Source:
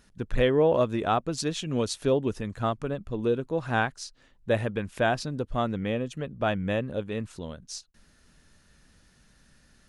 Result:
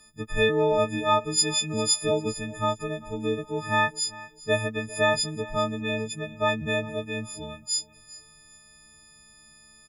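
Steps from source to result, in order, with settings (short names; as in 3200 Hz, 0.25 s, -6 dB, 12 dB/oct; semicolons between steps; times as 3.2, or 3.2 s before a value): frequency quantiser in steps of 6 st; feedback echo 0.399 s, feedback 32%, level -19.5 dB; gain -1.5 dB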